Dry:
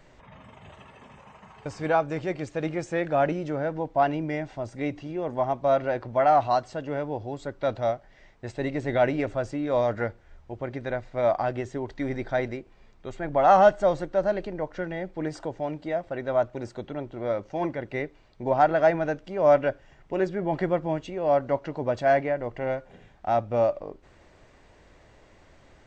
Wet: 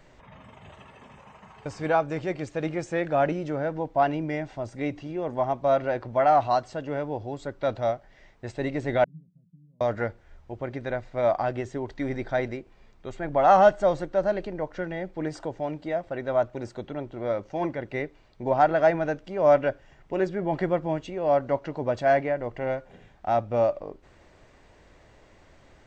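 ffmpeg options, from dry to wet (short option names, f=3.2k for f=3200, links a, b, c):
-filter_complex "[0:a]asettb=1/sr,asplit=3[a][b][c];[a]atrim=end=9.044[d];[b]atrim=start=9.04:end=9.81,asetpts=PTS-STARTPTS,afade=t=in:d=0.004:c=qsin,afade=t=out:st=0.766:d=0.004:c=qsin,asuperpass=centerf=170:order=4:qfactor=7.4[e];[c]atrim=start=9.806[f];[d][e]acrossfade=d=0.004:c1=hsin:c2=qsin[g];[g][f]acrossfade=d=0.004:c1=qsin:c2=hsin"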